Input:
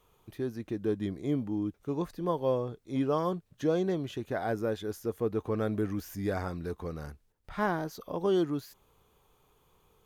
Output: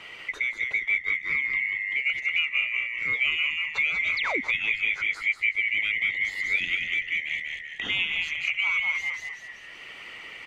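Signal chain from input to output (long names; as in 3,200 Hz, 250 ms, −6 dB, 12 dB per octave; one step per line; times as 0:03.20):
neighbouring bands swapped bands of 2,000 Hz
hum removal 257 Hz, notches 36
harmonic and percussive parts rebalanced percussive +9 dB
on a send: echo with shifted repeats 183 ms, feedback 31%, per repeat −88 Hz, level −4 dB
on the sum: sound drawn into the spectrogram fall, 0:04.00–0:04.23, 230–5,500 Hz −30 dBFS
high-frequency loss of the air 110 metres
wrong playback speed 25 fps video run at 24 fps
multiband upward and downward compressor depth 70%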